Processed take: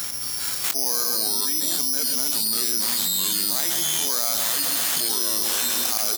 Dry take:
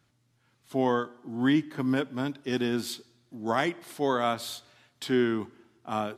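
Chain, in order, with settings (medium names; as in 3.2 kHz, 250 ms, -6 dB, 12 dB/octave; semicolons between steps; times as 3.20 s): slow attack 360 ms; careless resampling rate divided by 8×, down none, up zero stuff; ever faster or slower copies 226 ms, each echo -3 st, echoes 3, each echo -6 dB; high-pass 520 Hz 6 dB/octave; on a send: feedback delay 130 ms, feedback 54%, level -13 dB; on the sum: level flattener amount 100%; trim -8 dB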